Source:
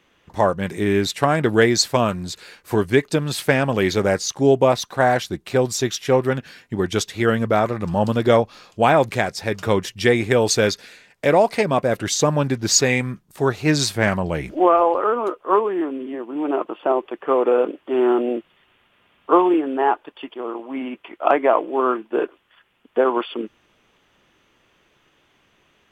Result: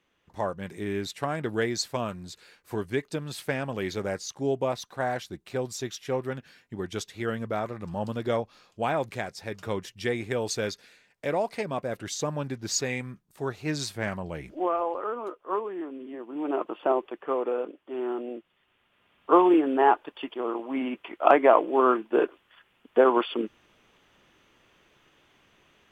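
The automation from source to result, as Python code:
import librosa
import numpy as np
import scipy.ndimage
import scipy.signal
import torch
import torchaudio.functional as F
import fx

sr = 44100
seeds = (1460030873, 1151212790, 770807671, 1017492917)

y = fx.gain(x, sr, db=fx.line((15.85, -12.0), (16.83, -4.0), (17.7, -13.5), (18.38, -13.5), (19.59, -1.5)))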